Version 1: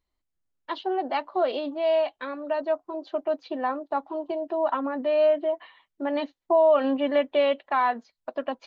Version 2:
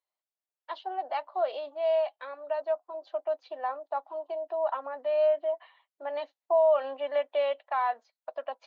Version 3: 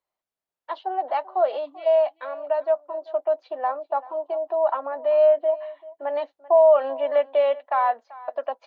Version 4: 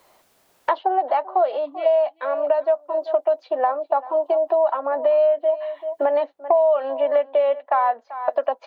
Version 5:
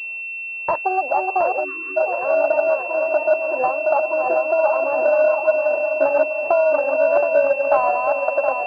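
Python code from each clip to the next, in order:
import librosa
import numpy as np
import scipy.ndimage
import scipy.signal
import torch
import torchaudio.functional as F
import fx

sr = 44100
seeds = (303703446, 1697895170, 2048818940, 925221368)

y1 = fx.ladder_highpass(x, sr, hz=520.0, resonance_pct=40)
y2 = fx.spec_box(y1, sr, start_s=1.65, length_s=0.21, low_hz=330.0, high_hz=1800.0, gain_db=-22)
y2 = fx.high_shelf(y2, sr, hz=2100.0, db=-11.0)
y2 = y2 + 10.0 ** (-19.5 / 20.0) * np.pad(y2, (int(388 * sr / 1000.0), 0))[:len(y2)]
y2 = y2 * librosa.db_to_amplitude(8.5)
y3 = fx.peak_eq(y2, sr, hz=350.0, db=3.0, octaves=2.6)
y3 = fx.band_squash(y3, sr, depth_pct=100)
y4 = fx.reverse_delay_fb(y3, sr, ms=360, feedback_pct=69, wet_db=-3.5)
y4 = fx.spec_erase(y4, sr, start_s=1.64, length_s=0.33, low_hz=480.0, high_hz=1000.0)
y4 = fx.pwm(y4, sr, carrier_hz=2700.0)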